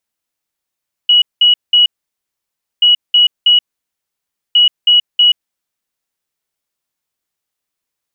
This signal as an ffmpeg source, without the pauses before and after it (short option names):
-f lavfi -i "aevalsrc='0.562*sin(2*PI*2920*t)*clip(min(mod(mod(t,1.73),0.32),0.13-mod(mod(t,1.73),0.32))/0.005,0,1)*lt(mod(t,1.73),0.96)':d=5.19:s=44100"